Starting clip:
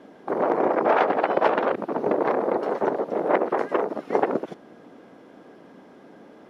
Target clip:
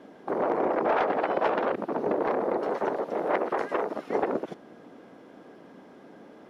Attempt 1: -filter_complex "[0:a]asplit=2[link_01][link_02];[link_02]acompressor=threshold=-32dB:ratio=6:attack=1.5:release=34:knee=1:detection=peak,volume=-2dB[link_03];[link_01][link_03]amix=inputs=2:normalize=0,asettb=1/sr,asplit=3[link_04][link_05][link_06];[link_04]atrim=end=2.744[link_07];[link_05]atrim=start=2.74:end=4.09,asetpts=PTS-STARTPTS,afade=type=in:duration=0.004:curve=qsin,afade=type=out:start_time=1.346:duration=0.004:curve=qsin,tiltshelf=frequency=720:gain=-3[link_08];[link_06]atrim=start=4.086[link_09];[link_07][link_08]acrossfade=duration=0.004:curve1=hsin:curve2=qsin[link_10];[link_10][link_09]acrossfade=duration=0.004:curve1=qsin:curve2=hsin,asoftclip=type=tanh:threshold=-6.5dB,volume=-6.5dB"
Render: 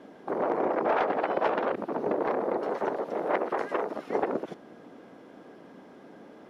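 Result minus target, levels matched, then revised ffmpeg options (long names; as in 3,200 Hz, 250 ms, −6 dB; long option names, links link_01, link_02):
downward compressor: peak gain reduction +6.5 dB
-filter_complex "[0:a]asplit=2[link_01][link_02];[link_02]acompressor=threshold=-24dB:ratio=6:attack=1.5:release=34:knee=1:detection=peak,volume=-2dB[link_03];[link_01][link_03]amix=inputs=2:normalize=0,asettb=1/sr,asplit=3[link_04][link_05][link_06];[link_04]atrim=end=2.744[link_07];[link_05]atrim=start=2.74:end=4.09,asetpts=PTS-STARTPTS,afade=type=in:duration=0.004:curve=qsin,afade=type=out:start_time=1.346:duration=0.004:curve=qsin,tiltshelf=frequency=720:gain=-3[link_08];[link_06]atrim=start=4.086[link_09];[link_07][link_08]acrossfade=duration=0.004:curve1=hsin:curve2=qsin[link_10];[link_10][link_09]acrossfade=duration=0.004:curve1=qsin:curve2=hsin,asoftclip=type=tanh:threshold=-6.5dB,volume=-6.5dB"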